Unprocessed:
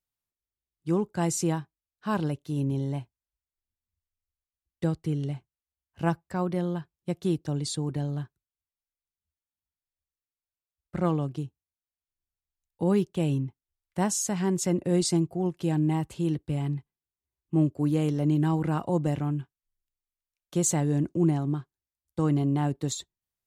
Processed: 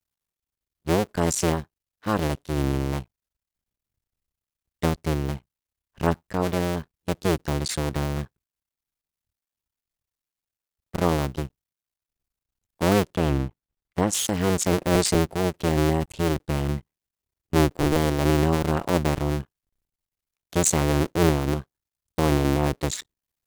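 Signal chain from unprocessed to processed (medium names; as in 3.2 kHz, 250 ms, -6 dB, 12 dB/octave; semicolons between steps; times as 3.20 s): cycle switcher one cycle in 2, muted; 13.15–14.13 s: treble shelf 3.9 kHz -8 dB; trim +6.5 dB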